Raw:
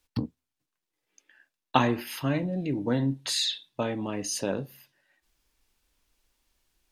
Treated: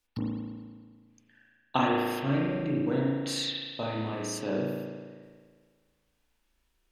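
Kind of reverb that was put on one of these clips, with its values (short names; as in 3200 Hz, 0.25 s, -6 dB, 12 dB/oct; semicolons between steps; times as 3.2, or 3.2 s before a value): spring tank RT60 1.7 s, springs 36 ms, chirp 75 ms, DRR -4 dB; gain -6 dB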